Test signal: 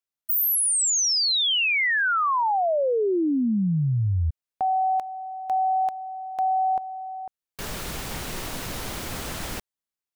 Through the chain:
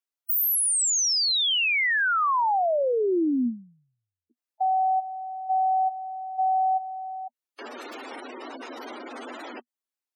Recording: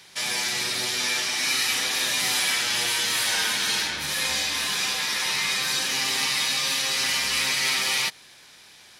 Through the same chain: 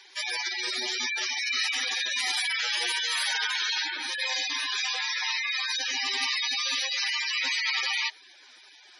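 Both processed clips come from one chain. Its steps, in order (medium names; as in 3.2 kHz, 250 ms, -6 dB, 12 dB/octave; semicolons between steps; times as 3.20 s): Chebyshev high-pass 240 Hz, order 6; spectral gate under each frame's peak -10 dB strong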